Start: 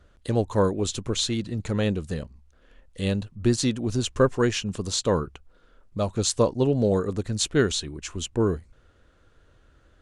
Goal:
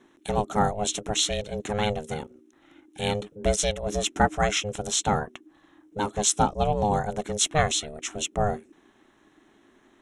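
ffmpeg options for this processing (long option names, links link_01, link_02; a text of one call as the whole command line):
ffmpeg -i in.wav -af "asuperstop=centerf=4600:order=12:qfactor=3.5,aeval=exprs='val(0)*sin(2*PI*310*n/s)':channel_layout=same,tiltshelf=frequency=830:gain=-4,volume=3dB" out.wav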